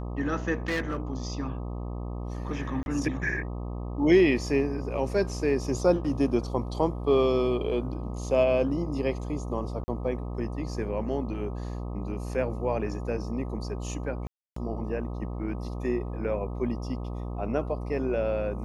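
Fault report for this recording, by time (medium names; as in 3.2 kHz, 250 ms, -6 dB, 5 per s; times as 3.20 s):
buzz 60 Hz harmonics 21 -34 dBFS
0.68–1.13 s: clipped -24.5 dBFS
2.83–2.86 s: dropout 31 ms
9.84–9.88 s: dropout 40 ms
14.27–14.56 s: dropout 294 ms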